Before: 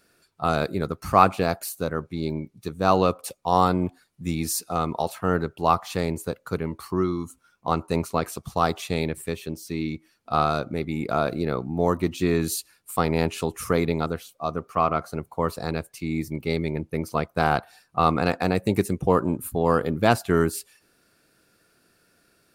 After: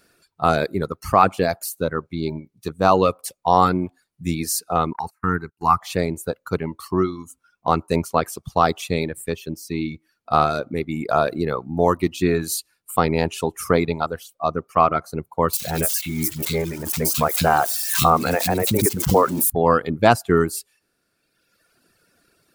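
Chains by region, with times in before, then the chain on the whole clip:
4.93–5.81 gate -34 dBFS, range -23 dB + fixed phaser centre 1400 Hz, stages 4 + mismatched tape noise reduction encoder only
15.53–19.5 switching spikes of -20 dBFS + three bands offset in time highs, lows, mids 40/70 ms, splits 280/2700 Hz + backwards sustainer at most 42 dB/s
whole clip: reverb removal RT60 1.5 s; dynamic EQ 840 Hz, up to +3 dB, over -35 dBFS, Q 0.9; maximiser +5 dB; gain -1 dB

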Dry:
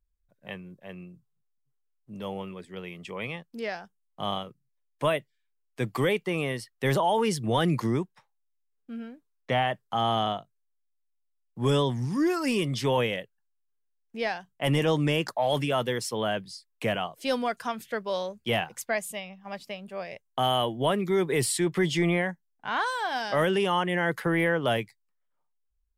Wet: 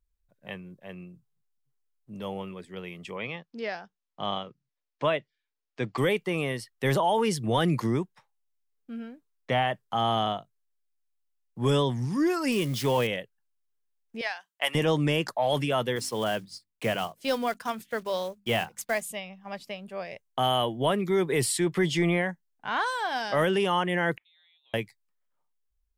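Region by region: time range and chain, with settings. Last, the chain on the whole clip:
3.17–5.98 LPF 5900 Hz 24 dB/oct + low shelf 77 Hz -11.5 dB
12.52–13.07 switching spikes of -27.5 dBFS + high shelf 4800 Hz -4.5 dB
14.21–14.75 HPF 1000 Hz + transient shaper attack +7 dB, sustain -1 dB
15.96–19.03 block floating point 5-bit + notches 50/100/150/200/250/300 Hz + gate -44 dBFS, range -8 dB
24.17–24.74 flipped gate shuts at -28 dBFS, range -40 dB + inverted band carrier 3900 Hz
whole clip: dry

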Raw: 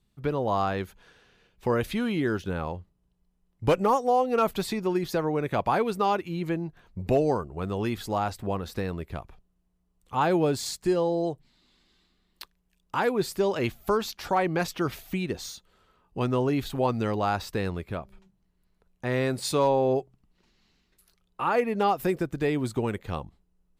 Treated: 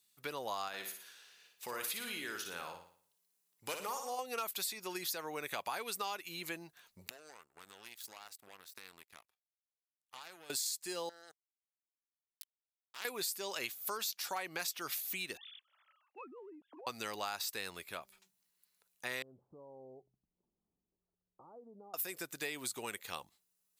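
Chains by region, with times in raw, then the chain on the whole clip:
0.68–4.19 HPF 120 Hz 6 dB/oct + compressor 1.5:1, threshold -35 dBFS + flutter echo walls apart 9.8 m, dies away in 0.52 s
7.08–10.5 compressor 16:1, threshold -30 dBFS + power-law curve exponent 2
11.09–13.05 bell 760 Hz -8 dB 0.25 oct + level quantiser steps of 11 dB + power-law curve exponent 3
15.37–16.87 sine-wave speech + treble ducked by the level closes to 380 Hz, closed at -24.5 dBFS + compressor, threshold -35 dBFS
19.22–21.94 low shelf 170 Hz +10 dB + compressor 5:1, threshold -34 dBFS + Gaussian blur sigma 13 samples
whole clip: differentiator; notch 3100 Hz, Q 26; compressor 6:1, threshold -45 dBFS; gain +9.5 dB

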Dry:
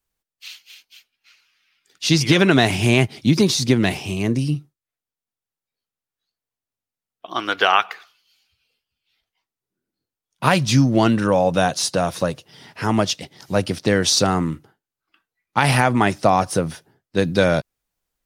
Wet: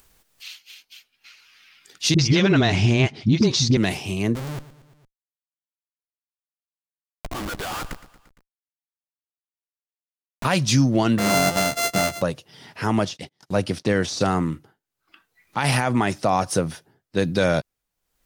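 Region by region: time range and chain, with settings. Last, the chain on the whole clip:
2.14–3.77 LPF 6100 Hz 24 dB/oct + low shelf 160 Hz +8 dB + dispersion highs, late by 47 ms, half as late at 330 Hz
4.35–10.45 Schmitt trigger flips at -30.5 dBFS + feedback echo 0.115 s, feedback 45%, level -15.5 dB
11.18–12.22 sample sorter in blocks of 64 samples + doubler 15 ms -4.5 dB
13.05–14.21 de-esser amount 65% + LPF 12000 Hz + gate -43 dBFS, range -26 dB
whole clip: dynamic EQ 6500 Hz, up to +4 dB, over -35 dBFS, Q 1.2; limiter -7.5 dBFS; upward compressor, threshold -38 dBFS; gain -1.5 dB

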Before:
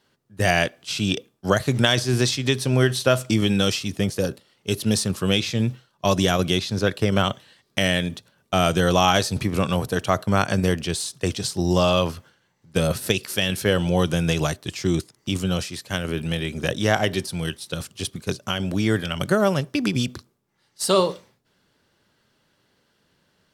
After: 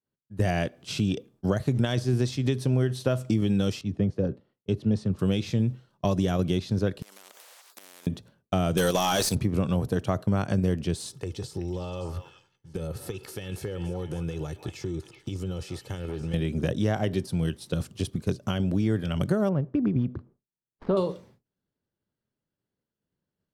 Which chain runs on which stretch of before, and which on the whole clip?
3.81–5.19 tape spacing loss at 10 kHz 22 dB + three-band expander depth 70%
7.02–8.07 compressor 12:1, threshold -33 dBFS + HPF 1100 Hz 24 dB/oct + spectral compressor 10:1
8.77–9.35 RIAA curve recording + level quantiser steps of 11 dB + sample leveller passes 3
11.11–16.34 comb 2.3 ms, depth 54% + compressor 8:1, threshold -33 dBFS + delay with a stepping band-pass 0.19 s, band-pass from 970 Hz, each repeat 1.4 oct, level -4 dB
19.49–20.97 switching dead time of 0.062 ms + LPF 1400 Hz
whole clip: expander -51 dBFS; tilt shelf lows +7 dB, about 690 Hz; compressor 2.5:1, threshold -25 dBFS

